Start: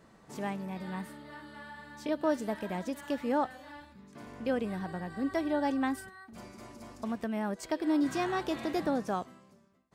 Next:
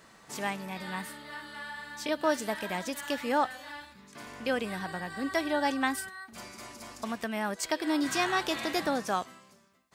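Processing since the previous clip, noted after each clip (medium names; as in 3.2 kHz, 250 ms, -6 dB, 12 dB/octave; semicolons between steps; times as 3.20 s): tilt shelf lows -7 dB, about 890 Hz; trim +4 dB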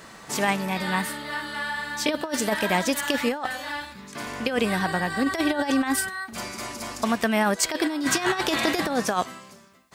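compressor with a negative ratio -31 dBFS, ratio -0.5; trim +9 dB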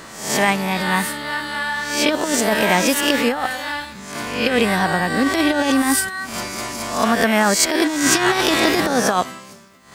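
reverse spectral sustain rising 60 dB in 0.59 s; trim +5 dB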